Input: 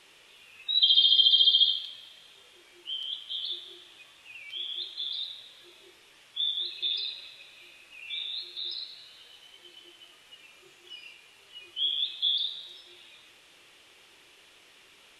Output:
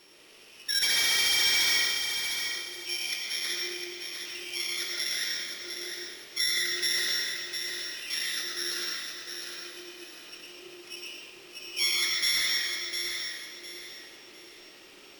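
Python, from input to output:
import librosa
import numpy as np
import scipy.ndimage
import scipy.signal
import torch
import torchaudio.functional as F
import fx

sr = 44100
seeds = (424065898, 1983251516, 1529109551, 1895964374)

p1 = np.r_[np.sort(x[:len(x) // 8 * 8].reshape(-1, 8), axis=1).ravel(), x[len(x) // 8 * 8:]]
p2 = fx.rider(p1, sr, range_db=3, speed_s=2.0)
p3 = p1 + (p2 * librosa.db_to_amplitude(0.0))
p4 = fx.peak_eq(p3, sr, hz=300.0, db=9.5, octaves=1.7)
p5 = fx.rev_freeverb(p4, sr, rt60_s=0.95, hf_ratio=0.7, predelay_ms=70, drr_db=-1.0)
p6 = np.clip(p5, -10.0 ** (-18.0 / 20.0), 10.0 ** (-18.0 / 20.0))
p7 = fx.peak_eq(p6, sr, hz=4100.0, db=5.5, octaves=1.6)
p8 = p7 + fx.echo_feedback(p7, sr, ms=705, feedback_pct=31, wet_db=-6.5, dry=0)
y = p8 * librosa.db_to_amplitude(-8.0)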